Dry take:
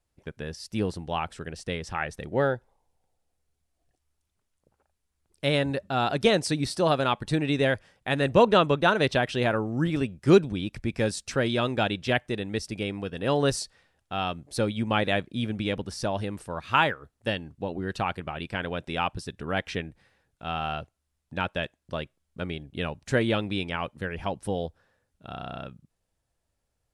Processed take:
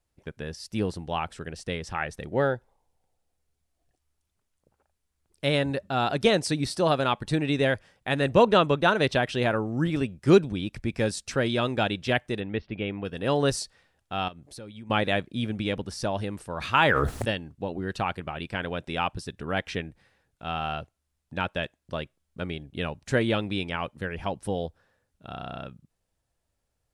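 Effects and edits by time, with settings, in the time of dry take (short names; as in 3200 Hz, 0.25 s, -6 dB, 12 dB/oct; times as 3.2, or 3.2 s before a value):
12.4–13.05 steep low-pass 3300 Hz
14.28–14.9 compressor 3:1, threshold -44 dBFS
16.58–17.31 sustainer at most 21 dB/s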